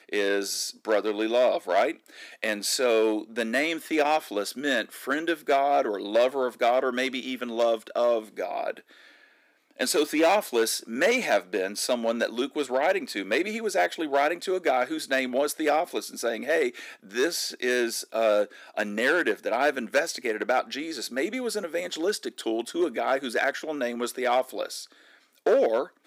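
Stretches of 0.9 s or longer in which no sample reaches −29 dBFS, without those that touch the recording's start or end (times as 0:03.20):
0:08.71–0:09.80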